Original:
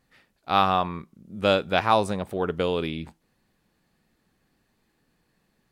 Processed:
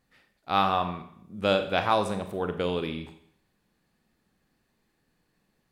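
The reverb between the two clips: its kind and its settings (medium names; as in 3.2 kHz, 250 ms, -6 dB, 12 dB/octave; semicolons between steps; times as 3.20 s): Schroeder reverb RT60 0.64 s, combs from 30 ms, DRR 8 dB; trim -3.5 dB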